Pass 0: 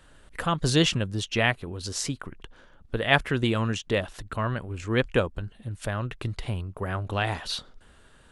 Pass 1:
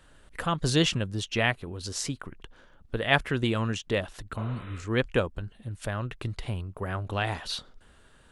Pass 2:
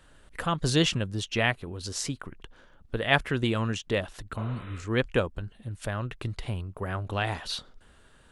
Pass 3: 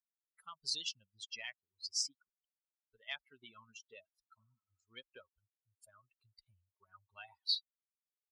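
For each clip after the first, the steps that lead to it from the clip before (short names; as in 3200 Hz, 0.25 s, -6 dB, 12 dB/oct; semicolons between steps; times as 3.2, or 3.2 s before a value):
spectral repair 4.41–4.8, 360–4000 Hz both; gain -2 dB
nothing audible
per-bin expansion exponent 3; compressor 6:1, threshold -32 dBFS, peak gain reduction 12 dB; band-pass 4800 Hz, Q 3.1; gain +8.5 dB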